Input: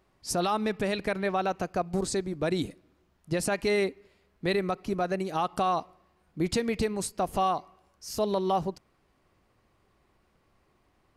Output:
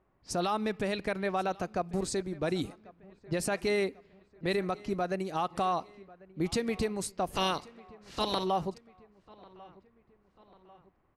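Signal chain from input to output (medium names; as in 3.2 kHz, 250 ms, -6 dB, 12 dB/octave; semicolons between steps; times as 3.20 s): 7.35–8.43 s: spectral peaks clipped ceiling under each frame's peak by 22 dB; feedback delay 1094 ms, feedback 50%, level -22 dB; level-controlled noise filter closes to 1.7 kHz, open at -26.5 dBFS; trim -3 dB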